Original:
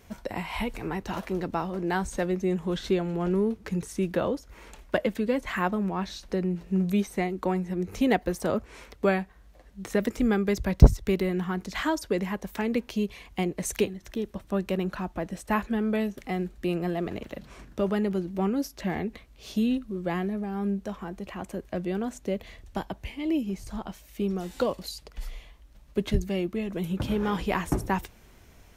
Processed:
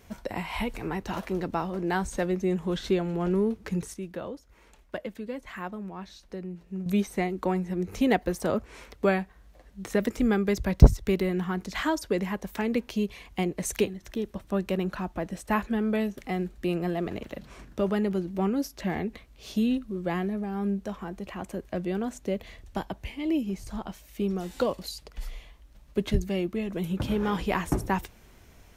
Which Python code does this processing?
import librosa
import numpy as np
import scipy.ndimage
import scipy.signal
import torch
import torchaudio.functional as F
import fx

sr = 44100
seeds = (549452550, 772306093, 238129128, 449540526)

y = fx.edit(x, sr, fx.clip_gain(start_s=3.94, length_s=2.92, db=-9.5), tone=tone)